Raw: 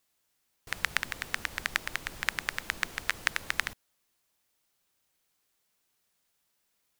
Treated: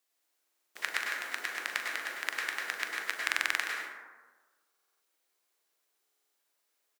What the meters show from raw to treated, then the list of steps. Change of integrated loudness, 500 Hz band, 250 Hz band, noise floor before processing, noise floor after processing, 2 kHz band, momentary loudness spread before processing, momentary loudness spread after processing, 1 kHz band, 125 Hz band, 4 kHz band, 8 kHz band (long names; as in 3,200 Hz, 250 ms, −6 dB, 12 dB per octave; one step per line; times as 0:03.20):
−1.0 dB, 0.0 dB, −5.5 dB, −77 dBFS, −79 dBFS, −0.5 dB, 4 LU, 7 LU, −0.5 dB, below −20 dB, −1.5 dB, −2.0 dB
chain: high-pass filter 300 Hz 24 dB per octave
double-tracking delay 40 ms −12.5 dB
dense smooth reverb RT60 1.3 s, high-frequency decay 0.4×, pre-delay 90 ms, DRR −1.5 dB
buffer that repeats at 0:00.43/0:03.25/0:04.69/0:06.01, samples 2,048, times 6
level −5 dB